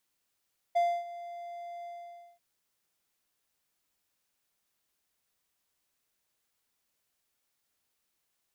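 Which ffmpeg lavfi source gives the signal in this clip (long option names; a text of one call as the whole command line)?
ffmpeg -f lavfi -i "aevalsrc='0.1*(1-4*abs(mod(693*t+0.25,1)-0.5))':duration=1.639:sample_rate=44100,afade=type=in:duration=0.016,afade=type=out:start_time=0.016:duration=0.27:silence=0.133,afade=type=out:start_time=1.1:duration=0.539" out.wav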